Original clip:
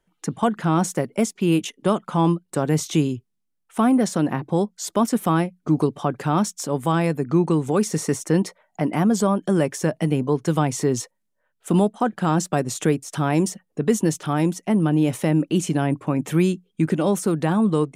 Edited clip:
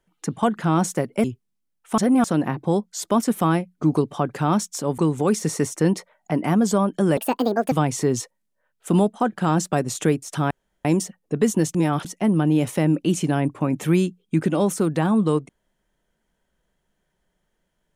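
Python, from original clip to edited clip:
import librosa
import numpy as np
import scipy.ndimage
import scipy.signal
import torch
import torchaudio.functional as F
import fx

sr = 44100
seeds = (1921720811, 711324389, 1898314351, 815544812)

y = fx.edit(x, sr, fx.cut(start_s=1.24, length_s=1.85),
    fx.reverse_span(start_s=3.83, length_s=0.26),
    fx.cut(start_s=6.83, length_s=0.64),
    fx.speed_span(start_s=9.66, length_s=0.86, speed=1.57),
    fx.insert_room_tone(at_s=13.31, length_s=0.34),
    fx.reverse_span(start_s=14.21, length_s=0.3), tone=tone)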